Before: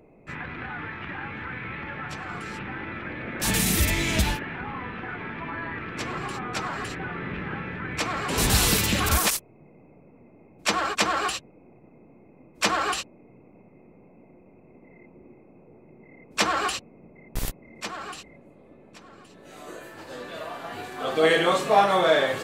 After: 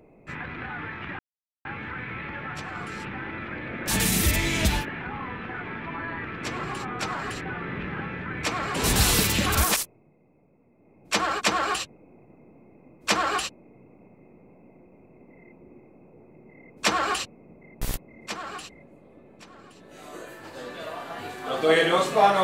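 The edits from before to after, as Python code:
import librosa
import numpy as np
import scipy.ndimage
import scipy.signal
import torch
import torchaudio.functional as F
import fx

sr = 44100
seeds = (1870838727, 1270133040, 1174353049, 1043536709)

y = fx.edit(x, sr, fx.insert_silence(at_s=1.19, length_s=0.46),
    fx.fade_down_up(start_s=9.24, length_s=1.47, db=-9.0, fade_s=0.43), tone=tone)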